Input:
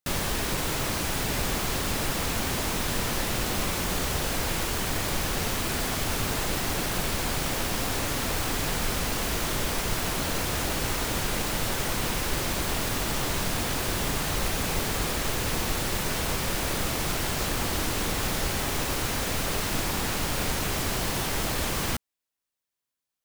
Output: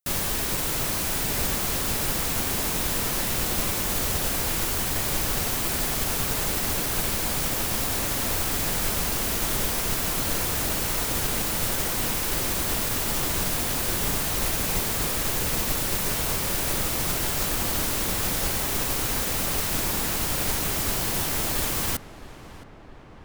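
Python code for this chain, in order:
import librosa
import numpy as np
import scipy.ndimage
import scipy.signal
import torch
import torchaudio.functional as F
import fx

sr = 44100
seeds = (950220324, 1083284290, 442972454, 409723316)

y = fx.high_shelf(x, sr, hz=7700.0, db=10.0)
y = fx.echo_filtered(y, sr, ms=667, feedback_pct=72, hz=2200.0, wet_db=-10)
y = fx.upward_expand(y, sr, threshold_db=-34.0, expansion=1.5)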